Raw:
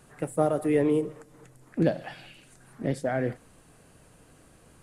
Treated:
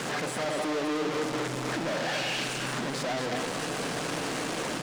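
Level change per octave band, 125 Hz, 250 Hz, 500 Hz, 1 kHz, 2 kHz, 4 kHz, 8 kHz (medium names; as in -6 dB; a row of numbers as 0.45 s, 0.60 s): -4.0 dB, -3.0 dB, -3.0 dB, +5.0 dB, +9.5 dB, +18.5 dB, +13.0 dB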